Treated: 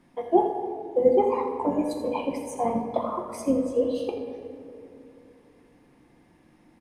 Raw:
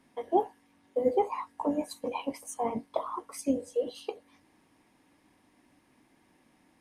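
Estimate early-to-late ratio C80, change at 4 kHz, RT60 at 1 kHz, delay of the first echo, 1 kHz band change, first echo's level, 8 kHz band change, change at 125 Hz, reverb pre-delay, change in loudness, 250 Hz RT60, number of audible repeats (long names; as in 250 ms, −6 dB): 6.0 dB, +1.0 dB, 2.2 s, 84 ms, +5.0 dB, −10.5 dB, −0.5 dB, +10.0 dB, 6 ms, +6.5 dB, 3.5 s, 1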